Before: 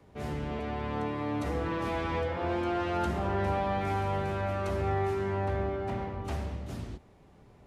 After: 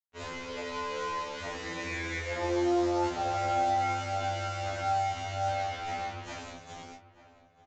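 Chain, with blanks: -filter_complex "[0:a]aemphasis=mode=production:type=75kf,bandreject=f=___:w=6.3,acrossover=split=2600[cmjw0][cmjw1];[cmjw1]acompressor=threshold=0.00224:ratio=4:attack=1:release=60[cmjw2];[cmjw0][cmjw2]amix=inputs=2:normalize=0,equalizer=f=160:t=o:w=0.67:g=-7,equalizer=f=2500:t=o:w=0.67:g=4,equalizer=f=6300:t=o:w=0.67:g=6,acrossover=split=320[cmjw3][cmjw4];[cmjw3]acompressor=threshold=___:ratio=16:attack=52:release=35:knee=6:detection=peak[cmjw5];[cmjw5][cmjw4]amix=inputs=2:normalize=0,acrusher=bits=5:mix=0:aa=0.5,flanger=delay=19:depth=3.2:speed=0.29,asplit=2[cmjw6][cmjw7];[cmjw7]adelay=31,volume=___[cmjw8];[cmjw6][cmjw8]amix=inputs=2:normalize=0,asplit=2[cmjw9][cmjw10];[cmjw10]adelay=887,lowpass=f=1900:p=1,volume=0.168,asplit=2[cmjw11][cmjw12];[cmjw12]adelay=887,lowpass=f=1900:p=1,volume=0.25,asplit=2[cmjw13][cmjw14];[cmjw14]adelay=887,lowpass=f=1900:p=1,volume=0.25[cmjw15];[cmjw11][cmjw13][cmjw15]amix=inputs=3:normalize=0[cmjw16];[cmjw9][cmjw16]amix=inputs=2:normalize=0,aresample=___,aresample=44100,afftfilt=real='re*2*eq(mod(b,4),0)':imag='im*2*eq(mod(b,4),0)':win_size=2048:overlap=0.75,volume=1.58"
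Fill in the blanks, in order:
5100, 0.00447, 0.282, 16000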